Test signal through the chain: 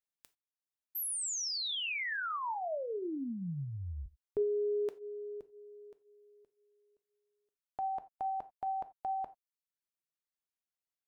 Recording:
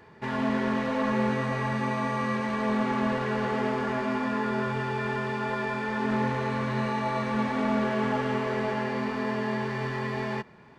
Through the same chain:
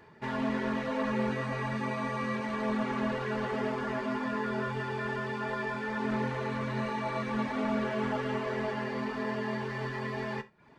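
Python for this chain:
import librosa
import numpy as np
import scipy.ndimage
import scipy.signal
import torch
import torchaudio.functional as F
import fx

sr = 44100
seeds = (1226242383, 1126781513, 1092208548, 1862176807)

y = fx.dereverb_blind(x, sr, rt60_s=0.55)
y = fx.rev_gated(y, sr, seeds[0], gate_ms=110, shape='falling', drr_db=10.5)
y = y * 10.0 ** (-3.0 / 20.0)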